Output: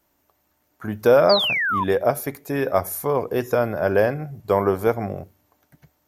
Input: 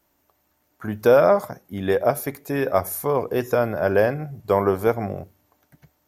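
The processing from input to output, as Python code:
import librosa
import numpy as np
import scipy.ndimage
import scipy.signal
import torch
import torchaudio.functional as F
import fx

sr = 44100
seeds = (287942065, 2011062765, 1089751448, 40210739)

y = fx.spec_paint(x, sr, seeds[0], shape='fall', start_s=1.29, length_s=0.55, low_hz=930.0, high_hz=5000.0, level_db=-22.0)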